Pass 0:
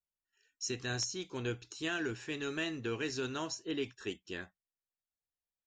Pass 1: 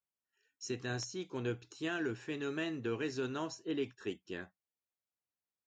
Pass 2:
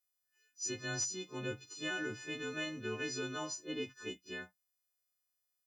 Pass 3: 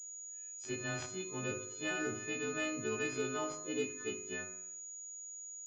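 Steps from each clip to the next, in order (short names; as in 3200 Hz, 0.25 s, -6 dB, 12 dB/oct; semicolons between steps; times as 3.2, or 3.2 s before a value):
HPF 100 Hz; high shelf 2100 Hz -9 dB; gain +1 dB
frequency quantiser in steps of 3 st; pre-echo 37 ms -17 dB; gain -3 dB
on a send at -2.5 dB: reverb RT60 0.80 s, pre-delay 3 ms; on the sum: pulse-width modulation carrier 6800 Hz; gain +1 dB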